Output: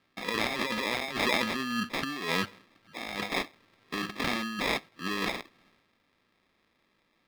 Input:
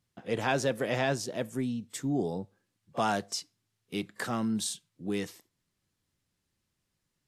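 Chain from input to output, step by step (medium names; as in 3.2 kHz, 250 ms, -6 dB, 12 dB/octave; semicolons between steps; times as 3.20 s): sample-and-hold 30×; compressor with a negative ratio -35 dBFS, ratio -0.5; resonant low shelf 170 Hz -7.5 dB, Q 1.5; transient shaper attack -4 dB, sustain +9 dB; high-order bell 2.4 kHz +11.5 dB 2.4 oct; trim +1.5 dB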